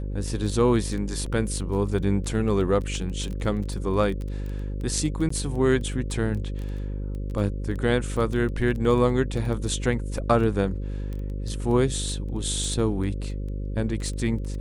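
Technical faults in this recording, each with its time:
buzz 50 Hz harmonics 11 -30 dBFS
crackle 10 per s -30 dBFS
1.26 s: dropout 4 ms
5.29–5.30 s: dropout 14 ms

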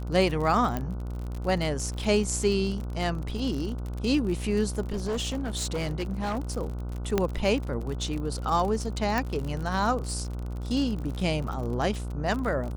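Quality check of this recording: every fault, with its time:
buzz 60 Hz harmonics 25 -33 dBFS
crackle 51 per s -32 dBFS
0.77 s: pop -16 dBFS
4.92–6.39 s: clipped -25.5 dBFS
7.18 s: pop -10 dBFS
9.18 s: pop

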